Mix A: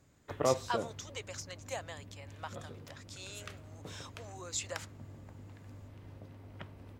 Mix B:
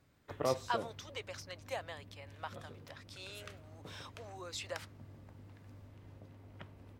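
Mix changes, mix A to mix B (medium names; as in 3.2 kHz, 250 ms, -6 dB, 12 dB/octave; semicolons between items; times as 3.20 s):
speech: add peaking EQ 7 kHz -14 dB 0.41 oct; background -4.0 dB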